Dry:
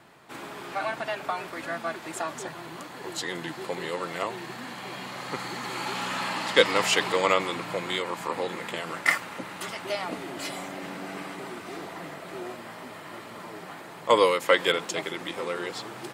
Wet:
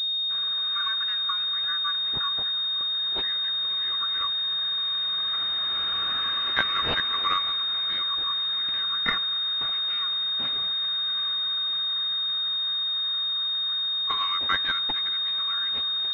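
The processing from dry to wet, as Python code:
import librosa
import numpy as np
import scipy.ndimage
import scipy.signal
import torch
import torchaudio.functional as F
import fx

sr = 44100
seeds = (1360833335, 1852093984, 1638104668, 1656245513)

y = scipy.signal.sosfilt(scipy.signal.cheby1(6, 6, 1100.0, 'highpass', fs=sr, output='sos'), x)
y = fx.pwm(y, sr, carrier_hz=3700.0)
y = y * 10.0 ** (5.5 / 20.0)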